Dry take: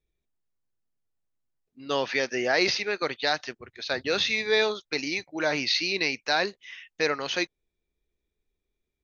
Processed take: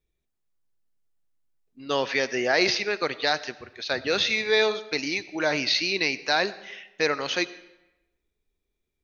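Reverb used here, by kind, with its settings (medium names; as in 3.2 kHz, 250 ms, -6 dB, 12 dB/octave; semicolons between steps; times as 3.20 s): algorithmic reverb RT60 0.96 s, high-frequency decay 0.8×, pre-delay 40 ms, DRR 16.5 dB; trim +1.5 dB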